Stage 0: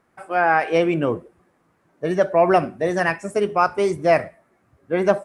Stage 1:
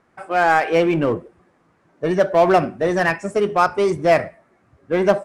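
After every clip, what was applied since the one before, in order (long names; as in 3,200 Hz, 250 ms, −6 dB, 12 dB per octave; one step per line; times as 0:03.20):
low-pass filter 7,600 Hz 12 dB per octave
in parallel at −11 dB: wave folding −21 dBFS
on the sum: level +1.5 dB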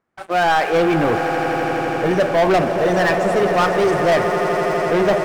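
echo that builds up and dies away 83 ms, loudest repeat 8, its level −14 dB
leveller curve on the samples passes 3
level −8.5 dB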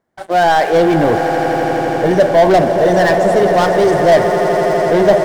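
thirty-one-band graphic EQ 630 Hz +4 dB, 1,250 Hz −9 dB, 2,500 Hz −9 dB
level +4.5 dB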